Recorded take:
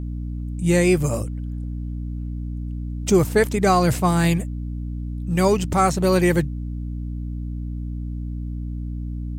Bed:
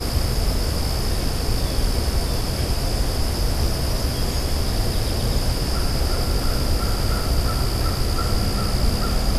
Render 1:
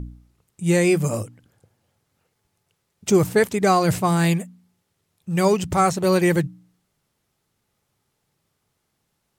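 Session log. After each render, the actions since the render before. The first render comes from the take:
hum removal 60 Hz, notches 5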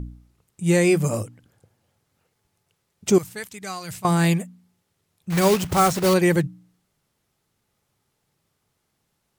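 0:03.18–0:04.05: guitar amp tone stack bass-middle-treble 5-5-5
0:05.30–0:06.14: one scale factor per block 3 bits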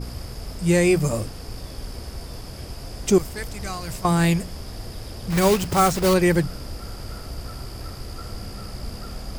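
mix in bed −13 dB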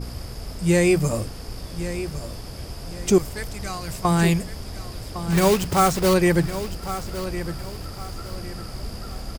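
repeating echo 1,108 ms, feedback 32%, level −12 dB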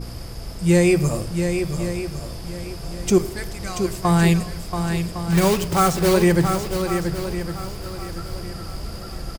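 single-tap delay 682 ms −7 dB
rectangular room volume 3,100 cubic metres, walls furnished, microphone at 0.76 metres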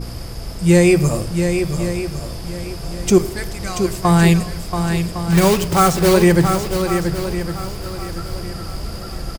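level +4 dB

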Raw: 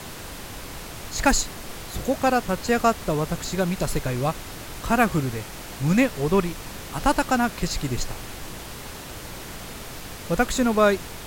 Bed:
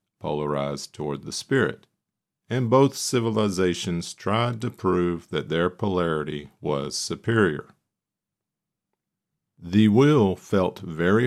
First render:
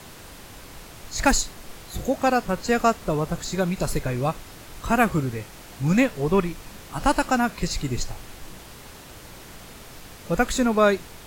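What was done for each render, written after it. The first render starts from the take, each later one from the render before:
noise reduction from a noise print 6 dB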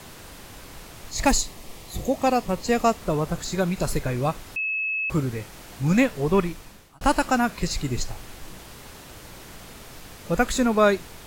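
0:01.11–0:02.97: parametric band 1,500 Hz −12.5 dB 0.25 octaves
0:04.56–0:05.10: beep over 2,590 Hz −23.5 dBFS
0:06.47–0:07.01: fade out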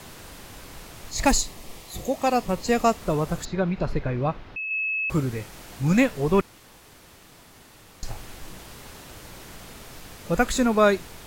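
0:01.80–0:02.34: low-shelf EQ 320 Hz −6 dB
0:03.45–0:04.71: high-frequency loss of the air 290 metres
0:06.41–0:08.03: fill with room tone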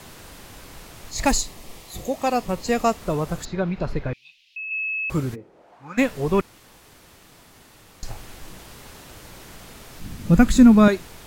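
0:04.13–0:04.72: elliptic high-pass filter 2,600 Hz, stop band 50 dB
0:05.34–0:05.97: resonant band-pass 270 Hz → 1,400 Hz, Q 2
0:10.00–0:10.88: low shelf with overshoot 330 Hz +10.5 dB, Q 1.5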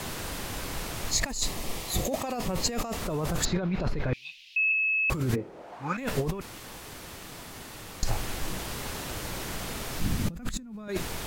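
compressor whose output falls as the input rises −30 dBFS, ratio −1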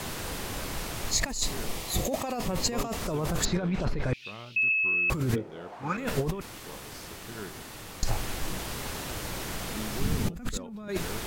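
mix in bed −21.5 dB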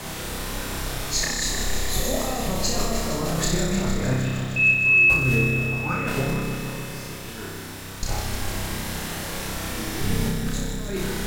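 flutter between parallel walls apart 5.3 metres, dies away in 0.79 s
feedback echo at a low word length 154 ms, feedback 80%, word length 8 bits, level −7 dB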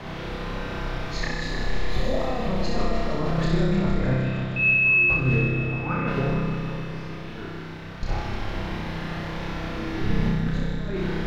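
high-frequency loss of the air 280 metres
flutter between parallel walls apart 11.6 metres, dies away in 0.65 s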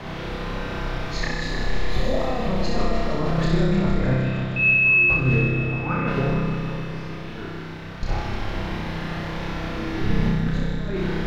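level +2 dB

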